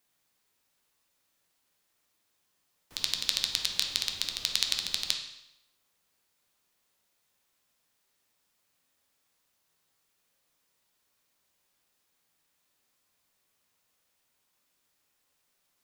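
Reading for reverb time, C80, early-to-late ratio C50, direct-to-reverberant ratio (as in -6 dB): 0.85 s, 9.0 dB, 6.5 dB, 2.0 dB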